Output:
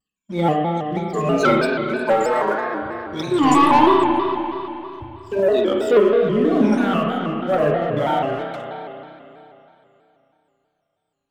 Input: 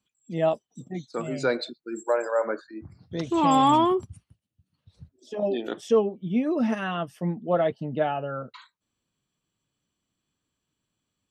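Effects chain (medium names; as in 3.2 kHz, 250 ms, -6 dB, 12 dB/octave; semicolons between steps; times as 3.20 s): drifting ripple filter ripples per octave 1.5, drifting -1.7 Hz, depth 23 dB; 1.24–2.52 s: comb 4.9 ms, depth 93%; waveshaping leveller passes 2; spring tank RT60 3 s, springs 31/38 ms, chirp 25 ms, DRR -1.5 dB; vibrato with a chosen wave square 3.1 Hz, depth 100 cents; trim -7 dB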